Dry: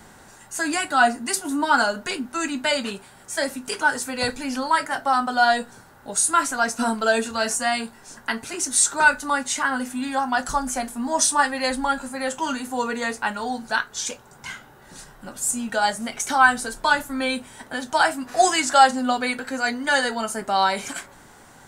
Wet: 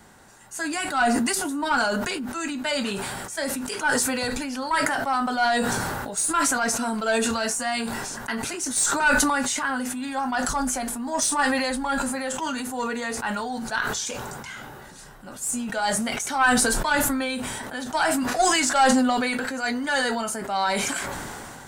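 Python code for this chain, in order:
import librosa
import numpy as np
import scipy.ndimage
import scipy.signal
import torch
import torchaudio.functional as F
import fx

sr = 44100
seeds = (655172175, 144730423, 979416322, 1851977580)

y = fx.diode_clip(x, sr, knee_db=-8.5)
y = fx.sustainer(y, sr, db_per_s=21.0)
y = y * librosa.db_to_amplitude(-4.0)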